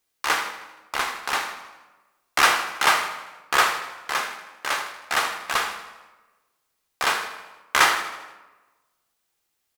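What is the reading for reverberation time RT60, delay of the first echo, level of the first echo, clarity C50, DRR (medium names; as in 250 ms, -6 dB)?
1.2 s, 79 ms, -13.0 dB, 8.0 dB, 6.5 dB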